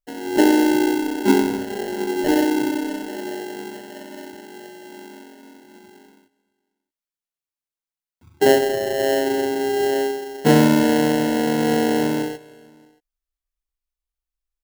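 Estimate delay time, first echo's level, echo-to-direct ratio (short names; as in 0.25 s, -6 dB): 0.314 s, -23.5 dB, -22.0 dB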